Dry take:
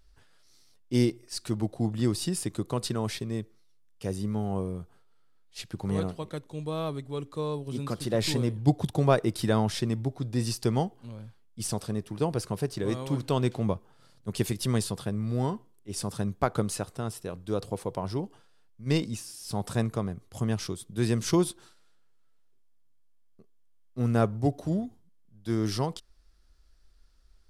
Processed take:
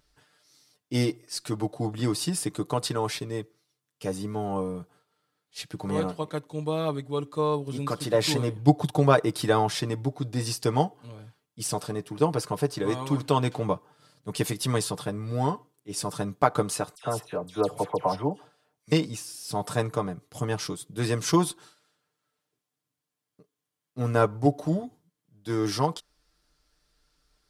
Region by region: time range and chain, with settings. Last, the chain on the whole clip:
0:16.95–0:18.92: parametric band 680 Hz +5 dB 0.74 octaves + all-pass dispersion lows, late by 86 ms, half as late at 2,000 Hz
whole clip: high-pass filter 160 Hz 6 dB per octave; comb filter 6.7 ms, depth 64%; dynamic equaliser 990 Hz, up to +5 dB, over −44 dBFS, Q 1.1; level +1.5 dB

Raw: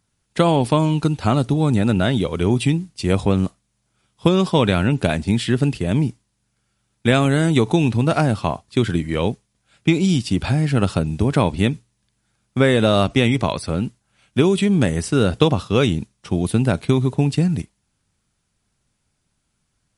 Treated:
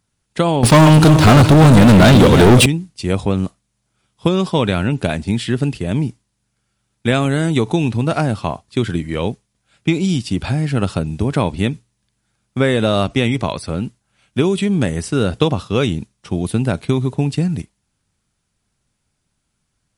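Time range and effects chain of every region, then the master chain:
0:00.63–0:02.66: feedback delay that plays each chunk backwards 179 ms, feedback 42%, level −10.5 dB + leveller curve on the samples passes 5
whole clip: no processing

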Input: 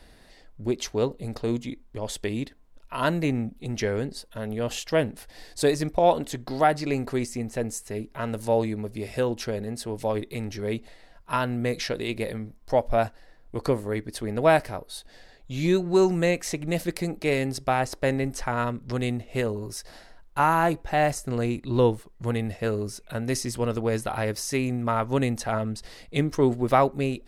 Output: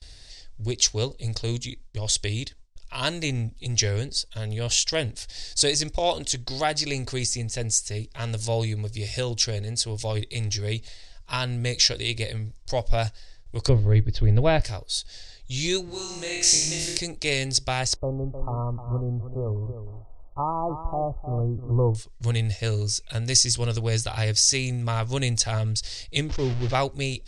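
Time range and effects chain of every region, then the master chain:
0:13.69–0:14.62: low-pass filter 4,400 Hz 24 dB per octave + spectral tilt −3 dB per octave
0:15.85–0:16.98: downward compressor 5 to 1, threshold −29 dBFS + flutter between parallel walls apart 4.4 metres, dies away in 0.91 s
0:17.96–0:21.95: linear-phase brick-wall low-pass 1,300 Hz + single-tap delay 308 ms −10.5 dB
0:26.29–0:26.75: linear delta modulator 64 kbit/s, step −23.5 dBFS + head-to-tape spacing loss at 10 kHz 40 dB
whole clip: noise gate with hold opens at −45 dBFS; drawn EQ curve 110 Hz 0 dB, 180 Hz −19 dB, 380 Hz −13 dB, 1,300 Hz −14 dB, 5,500 Hz +8 dB, 8,900 Hz +2 dB, 13,000 Hz −28 dB; level +8.5 dB

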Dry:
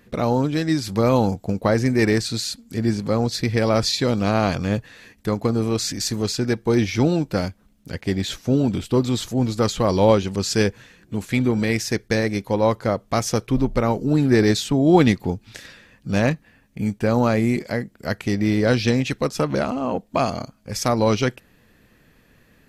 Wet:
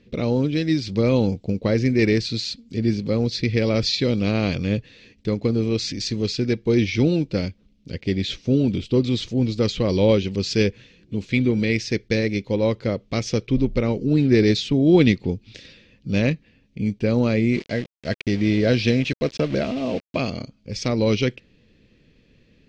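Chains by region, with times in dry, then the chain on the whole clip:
0:17.52–0:20.17: hollow resonant body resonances 660/1,600 Hz, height 11 dB, ringing for 60 ms + centre clipping without the shift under −30.5 dBFS
whole clip: dynamic equaliser 1,900 Hz, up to +5 dB, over −39 dBFS, Q 1.2; low-pass filter 5,300 Hz 24 dB per octave; flat-topped bell 1,100 Hz −12.5 dB

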